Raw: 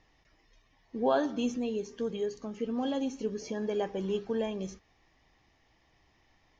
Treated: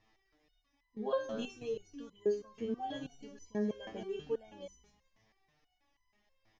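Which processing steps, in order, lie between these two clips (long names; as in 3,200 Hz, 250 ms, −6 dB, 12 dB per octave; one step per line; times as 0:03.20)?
echo with shifted repeats 170 ms, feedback 31%, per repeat −130 Hz, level −14 dB
step-sequenced resonator 6.2 Hz 110–1,000 Hz
level +5.5 dB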